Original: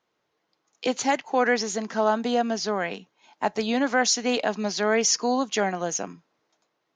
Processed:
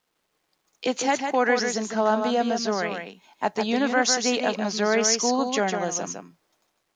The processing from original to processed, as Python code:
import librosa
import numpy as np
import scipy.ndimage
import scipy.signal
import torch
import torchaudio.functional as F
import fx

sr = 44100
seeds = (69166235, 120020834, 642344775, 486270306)

y = fx.quant_dither(x, sr, seeds[0], bits=12, dither='none')
y = y + 10.0 ** (-6.0 / 20.0) * np.pad(y, (int(153 * sr / 1000.0), 0))[:len(y)]